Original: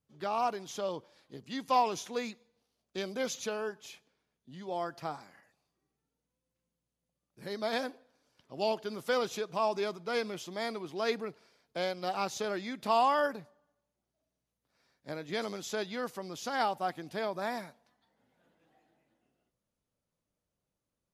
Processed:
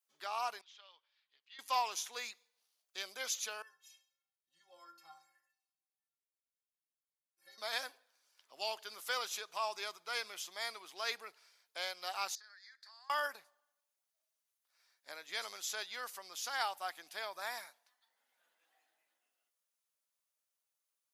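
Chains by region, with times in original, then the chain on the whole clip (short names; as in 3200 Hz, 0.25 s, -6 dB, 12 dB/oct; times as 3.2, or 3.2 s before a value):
0.61–1.59 LPF 3300 Hz 24 dB/oct + differentiator
3.62–7.58 metallic resonator 160 Hz, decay 0.44 s, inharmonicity 0.03 + feedback echo 68 ms, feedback 41%, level -14.5 dB
12.35–13.1 double band-pass 2800 Hz, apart 1.4 oct + compressor, threshold -53 dBFS
whole clip: HPF 1100 Hz 12 dB/oct; high shelf 6900 Hz +9.5 dB; gain -1.5 dB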